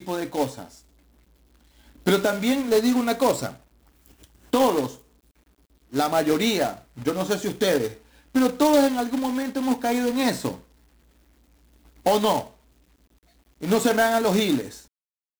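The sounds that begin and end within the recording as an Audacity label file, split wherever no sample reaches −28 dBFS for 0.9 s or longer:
2.060000	3.510000	sound
4.530000	4.910000	sound
5.940000	10.530000	sound
12.060000	12.410000	sound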